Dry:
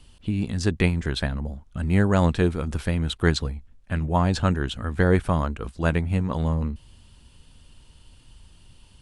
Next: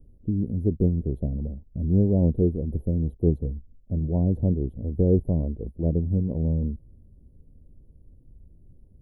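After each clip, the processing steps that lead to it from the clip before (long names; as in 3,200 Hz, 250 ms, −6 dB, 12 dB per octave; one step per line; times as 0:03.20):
inverse Chebyshev band-stop filter 1,200–8,100 Hz, stop band 50 dB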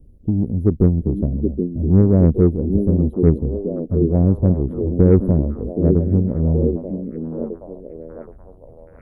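harmonic generator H 7 −31 dB, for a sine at −8.5 dBFS
echo through a band-pass that steps 774 ms, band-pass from 290 Hz, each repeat 0.7 octaves, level −2 dB
level +7.5 dB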